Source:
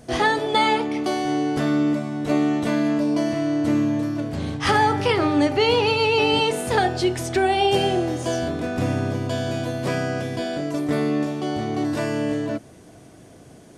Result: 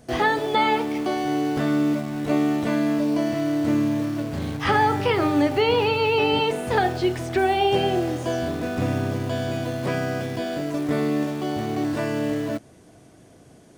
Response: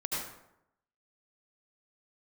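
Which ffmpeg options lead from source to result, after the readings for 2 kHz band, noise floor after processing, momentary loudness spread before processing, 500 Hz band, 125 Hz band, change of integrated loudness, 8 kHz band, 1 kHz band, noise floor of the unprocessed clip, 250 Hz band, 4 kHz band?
-1.5 dB, -51 dBFS, 8 LU, -1.0 dB, -1.0 dB, -1.0 dB, -5.0 dB, -1.0 dB, -47 dBFS, -1.0 dB, -4.0 dB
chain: -filter_complex "[0:a]asplit=2[a][b];[b]acrusher=bits=4:mix=0:aa=0.000001,volume=-7.5dB[c];[a][c]amix=inputs=2:normalize=0,acrossover=split=3500[d][e];[e]acompressor=threshold=-38dB:ratio=4:attack=1:release=60[f];[d][f]amix=inputs=2:normalize=0,volume=-4dB"

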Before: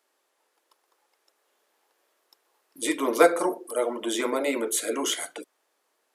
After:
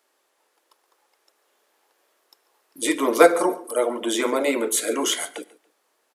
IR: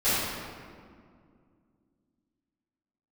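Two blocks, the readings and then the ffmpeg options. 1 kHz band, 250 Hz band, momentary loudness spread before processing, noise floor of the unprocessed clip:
+4.0 dB, +4.0 dB, 11 LU, -74 dBFS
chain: -filter_complex "[0:a]aecho=1:1:141|282:0.0841|0.0261,asplit=2[a][b];[1:a]atrim=start_sample=2205,afade=t=out:st=0.21:d=0.01,atrim=end_sample=9702[c];[b][c]afir=irnorm=-1:irlink=0,volume=-34dB[d];[a][d]amix=inputs=2:normalize=0,volume=4dB"

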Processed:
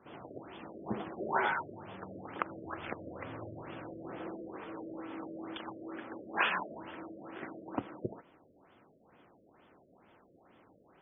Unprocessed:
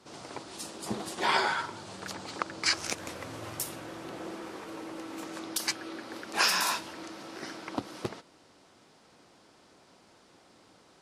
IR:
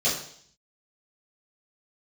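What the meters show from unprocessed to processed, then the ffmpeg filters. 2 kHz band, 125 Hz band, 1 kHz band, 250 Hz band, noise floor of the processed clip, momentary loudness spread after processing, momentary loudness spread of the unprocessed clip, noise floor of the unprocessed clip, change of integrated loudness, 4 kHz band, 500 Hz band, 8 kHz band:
-5.0 dB, -2.0 dB, -4.0 dB, -2.0 dB, -65 dBFS, 15 LU, 15 LU, -61 dBFS, -6.5 dB, -15.5 dB, -2.0 dB, under -40 dB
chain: -af "afftfilt=real='re*lt(b*sr/1024,640*pow(3600/640,0.5+0.5*sin(2*PI*2.2*pts/sr)))':imag='im*lt(b*sr/1024,640*pow(3600/640,0.5+0.5*sin(2*PI*2.2*pts/sr)))':win_size=1024:overlap=0.75,volume=-2dB"

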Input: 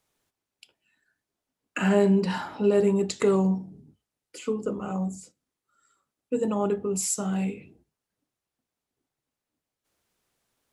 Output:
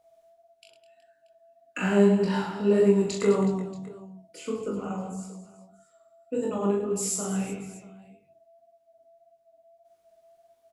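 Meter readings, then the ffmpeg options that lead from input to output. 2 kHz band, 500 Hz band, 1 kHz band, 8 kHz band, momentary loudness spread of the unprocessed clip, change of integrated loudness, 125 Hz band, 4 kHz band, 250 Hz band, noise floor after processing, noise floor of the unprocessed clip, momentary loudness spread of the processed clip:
-0.5 dB, +0.5 dB, -1.0 dB, -1.0 dB, 11 LU, 0.0 dB, -1.0 dB, -1.0 dB, 0.0 dB, -66 dBFS, under -85 dBFS, 20 LU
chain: -af "aeval=exprs='val(0)+0.00158*sin(2*PI*670*n/s)':c=same,aecho=1:1:40|104|206.4|370.2|632.4:0.631|0.398|0.251|0.158|0.1,flanger=delay=20:depth=5.5:speed=1.7"

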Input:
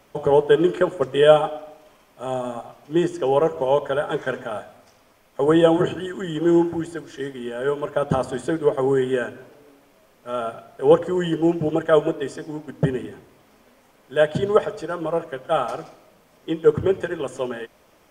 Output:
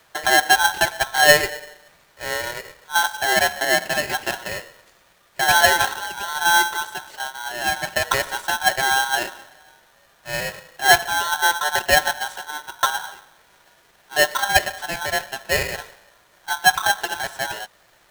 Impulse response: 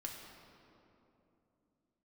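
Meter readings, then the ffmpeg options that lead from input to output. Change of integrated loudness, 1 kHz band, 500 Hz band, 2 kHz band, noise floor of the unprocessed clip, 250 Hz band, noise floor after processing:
+2.0 dB, +7.0 dB, -7.5 dB, +15.0 dB, -57 dBFS, -14.5 dB, -57 dBFS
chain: -af "bandreject=f=950:w=12,aeval=exprs='val(0)*sgn(sin(2*PI*1200*n/s))':c=same"

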